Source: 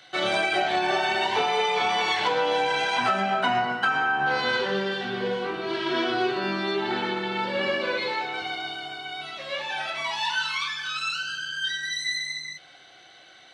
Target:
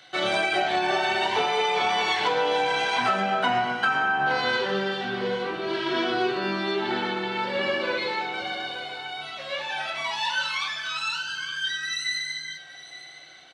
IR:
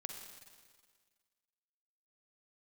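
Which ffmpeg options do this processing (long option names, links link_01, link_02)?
-af "aecho=1:1:864:0.178"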